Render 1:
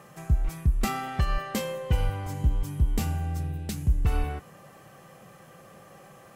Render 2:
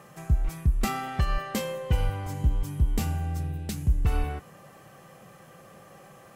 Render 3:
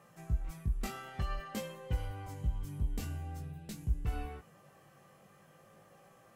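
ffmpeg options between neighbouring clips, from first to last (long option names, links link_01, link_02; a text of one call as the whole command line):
ffmpeg -i in.wav -af anull out.wav
ffmpeg -i in.wav -af "flanger=delay=17.5:depth=3.5:speed=0.49,volume=-7.5dB" out.wav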